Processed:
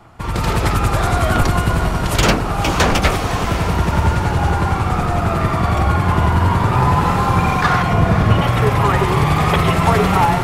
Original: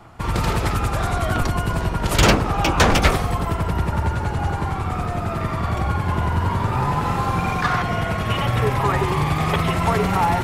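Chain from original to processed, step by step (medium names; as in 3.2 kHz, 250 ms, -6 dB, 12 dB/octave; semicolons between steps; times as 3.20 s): 7.93–8.42 s: tilt shelf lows +7 dB, about 840 Hz; level rider gain up to 6.5 dB; on a send: echo that smears into a reverb 530 ms, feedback 59%, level -8.5 dB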